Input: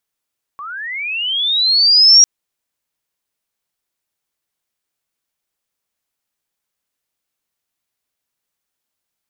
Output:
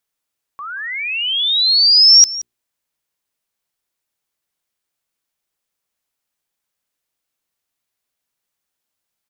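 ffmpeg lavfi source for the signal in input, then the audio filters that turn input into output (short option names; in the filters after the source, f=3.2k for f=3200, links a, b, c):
-f lavfi -i "aevalsrc='pow(10,(-26.5+23.5*t/1.65)/20)*sin(2*PI*(1100*t+4600*t*t/(2*1.65)))':d=1.65:s=44100"
-af "bandreject=f=60:t=h:w=6,bandreject=f=120:t=h:w=6,bandreject=f=180:t=h:w=6,bandreject=f=240:t=h:w=6,bandreject=f=300:t=h:w=6,bandreject=f=360:t=h:w=6,bandreject=f=420:t=h:w=6,aecho=1:1:175:0.133"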